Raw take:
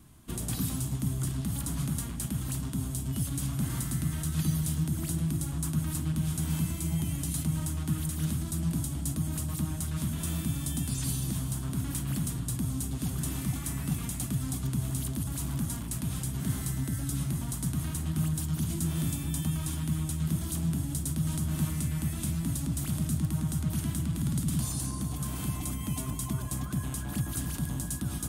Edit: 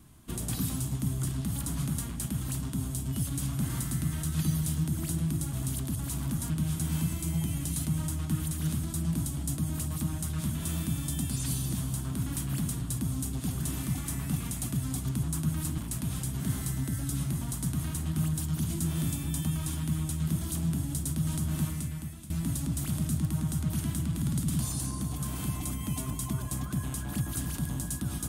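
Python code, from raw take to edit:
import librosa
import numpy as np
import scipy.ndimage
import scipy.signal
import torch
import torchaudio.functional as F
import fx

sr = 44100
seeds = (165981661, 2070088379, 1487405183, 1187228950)

y = fx.edit(x, sr, fx.swap(start_s=5.53, length_s=0.55, other_s=14.81, other_length_s=0.97),
    fx.fade_out_to(start_s=21.56, length_s=0.74, floor_db=-17.0), tone=tone)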